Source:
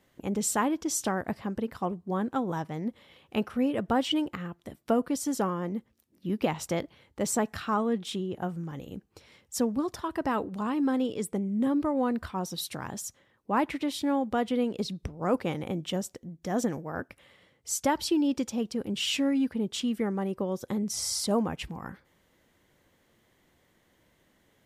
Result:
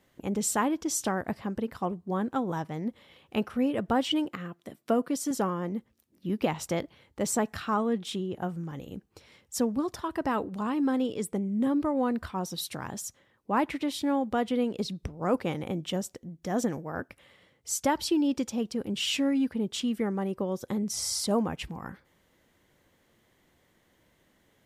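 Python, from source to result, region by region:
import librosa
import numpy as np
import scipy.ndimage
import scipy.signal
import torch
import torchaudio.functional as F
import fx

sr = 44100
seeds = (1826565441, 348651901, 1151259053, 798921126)

y = fx.chain(x, sr, fx.highpass(hz=150.0, slope=12),
    fx.notch(hz=870.0, q=12.0), at=(4.25, 5.31))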